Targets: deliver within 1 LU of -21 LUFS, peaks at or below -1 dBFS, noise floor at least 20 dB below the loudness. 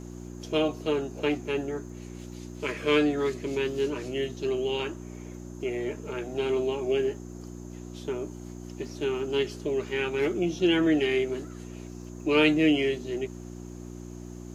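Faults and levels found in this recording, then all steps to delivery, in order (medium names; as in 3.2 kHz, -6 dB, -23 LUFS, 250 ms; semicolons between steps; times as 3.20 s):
tick rate 37 per s; hum 60 Hz; highest harmonic 360 Hz; hum level -38 dBFS; loudness -28.0 LUFS; peak level -10.0 dBFS; loudness target -21.0 LUFS
-> de-click; de-hum 60 Hz, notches 6; trim +7 dB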